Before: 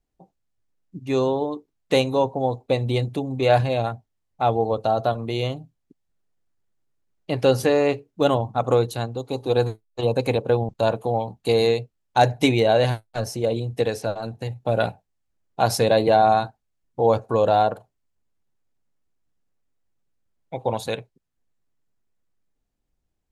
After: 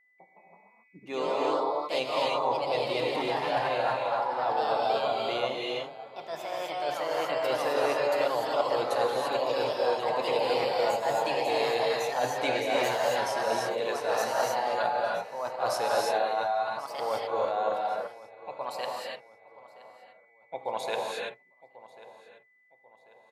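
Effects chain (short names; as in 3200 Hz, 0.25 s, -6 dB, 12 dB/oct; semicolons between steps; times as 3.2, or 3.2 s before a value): HPF 880 Hz 12 dB/oct; tilt -3 dB/oct; reverse; compressor, threshold -31 dBFS, peak gain reduction 15 dB; reverse; non-linear reverb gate 0.36 s rising, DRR -2 dB; whine 2000 Hz -63 dBFS; on a send: feedback echo 1.091 s, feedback 38%, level -17.5 dB; on the sum: echoes that change speed 0.186 s, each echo +2 st, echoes 2; mismatched tape noise reduction decoder only; gain +2.5 dB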